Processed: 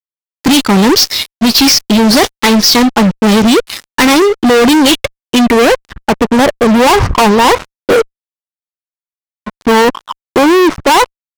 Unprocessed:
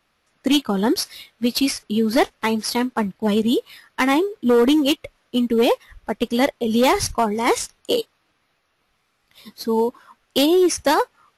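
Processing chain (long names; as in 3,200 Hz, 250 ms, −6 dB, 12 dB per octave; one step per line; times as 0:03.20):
low-pass filter sweep 5,600 Hz → 1,100 Hz, 0:04.66–0:06.19
fuzz pedal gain 30 dB, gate −39 dBFS
level +7.5 dB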